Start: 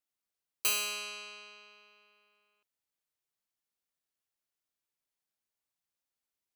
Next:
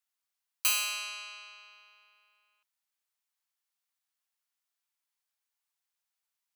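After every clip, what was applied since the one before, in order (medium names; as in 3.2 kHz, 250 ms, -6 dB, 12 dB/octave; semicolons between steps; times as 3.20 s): high-pass 760 Hz 24 dB/octave; trim +2.5 dB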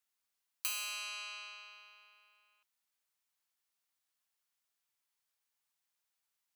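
compression 2.5:1, threshold -41 dBFS, peak gain reduction 12 dB; trim +1 dB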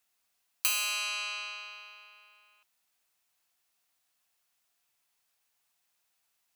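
small resonant body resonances 710/2600 Hz, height 7 dB; trim +8.5 dB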